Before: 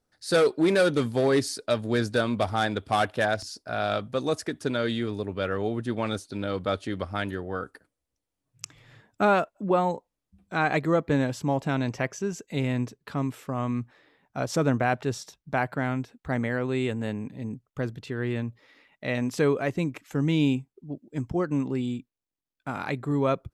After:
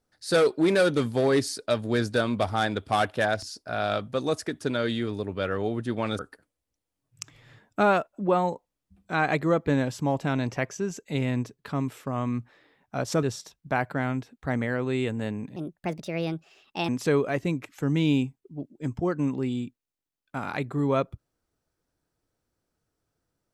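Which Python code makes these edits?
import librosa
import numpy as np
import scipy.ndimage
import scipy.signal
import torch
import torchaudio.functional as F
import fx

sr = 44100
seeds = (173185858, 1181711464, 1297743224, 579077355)

y = fx.edit(x, sr, fx.cut(start_s=6.19, length_s=1.42),
    fx.cut(start_s=14.65, length_s=0.4),
    fx.speed_span(start_s=17.38, length_s=1.83, speed=1.38), tone=tone)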